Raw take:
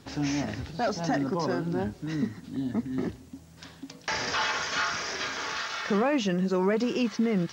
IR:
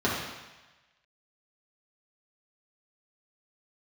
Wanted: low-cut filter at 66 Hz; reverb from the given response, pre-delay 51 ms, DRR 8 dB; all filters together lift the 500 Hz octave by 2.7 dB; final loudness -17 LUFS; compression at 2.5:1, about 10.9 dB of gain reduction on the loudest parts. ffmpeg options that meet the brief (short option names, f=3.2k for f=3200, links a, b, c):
-filter_complex "[0:a]highpass=66,equalizer=f=500:t=o:g=3.5,acompressor=threshold=-37dB:ratio=2.5,asplit=2[a][b];[1:a]atrim=start_sample=2205,adelay=51[c];[b][c]afir=irnorm=-1:irlink=0,volume=-21.5dB[d];[a][d]amix=inputs=2:normalize=0,volume=18.5dB"